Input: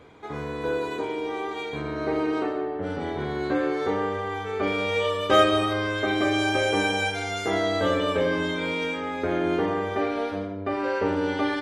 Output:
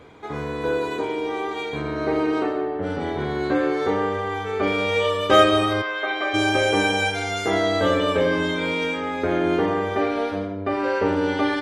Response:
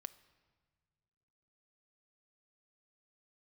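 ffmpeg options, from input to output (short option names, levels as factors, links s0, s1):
-filter_complex "[0:a]asplit=3[s0][s1][s2];[s0]afade=t=out:st=5.81:d=0.02[s3];[s1]highpass=660,lowpass=3200,afade=t=in:st=5.81:d=0.02,afade=t=out:st=6.33:d=0.02[s4];[s2]afade=t=in:st=6.33:d=0.02[s5];[s3][s4][s5]amix=inputs=3:normalize=0,volume=1.5"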